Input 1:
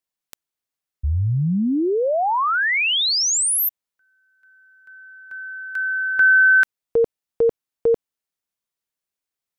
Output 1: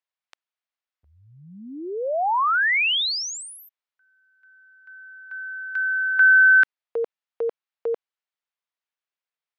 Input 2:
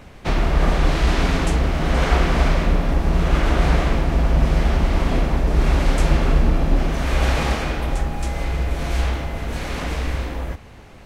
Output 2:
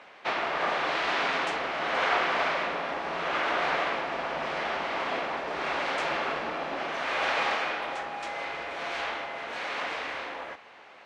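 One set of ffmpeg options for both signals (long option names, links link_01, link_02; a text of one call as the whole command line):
ffmpeg -i in.wav -af "highpass=700,lowpass=3500" out.wav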